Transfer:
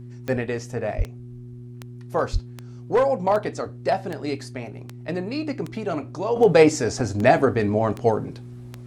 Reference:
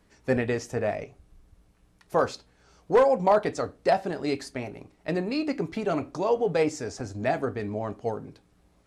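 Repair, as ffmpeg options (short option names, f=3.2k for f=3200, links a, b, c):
-filter_complex "[0:a]adeclick=t=4,bandreject=f=121.6:t=h:w=4,bandreject=f=243.2:t=h:w=4,bandreject=f=364.8:t=h:w=4,asplit=3[a][b][c];[a]afade=t=out:st=0.97:d=0.02[d];[b]highpass=f=140:w=0.5412,highpass=f=140:w=1.3066,afade=t=in:st=0.97:d=0.02,afade=t=out:st=1.09:d=0.02[e];[c]afade=t=in:st=1.09:d=0.02[f];[d][e][f]amix=inputs=3:normalize=0,asplit=3[g][h][i];[g]afade=t=out:st=2.32:d=0.02[j];[h]highpass=f=140:w=0.5412,highpass=f=140:w=1.3066,afade=t=in:st=2.32:d=0.02,afade=t=out:st=2.44:d=0.02[k];[i]afade=t=in:st=2.44:d=0.02[l];[j][k][l]amix=inputs=3:normalize=0,asetnsamples=n=441:p=0,asendcmd='6.36 volume volume -10dB',volume=0dB"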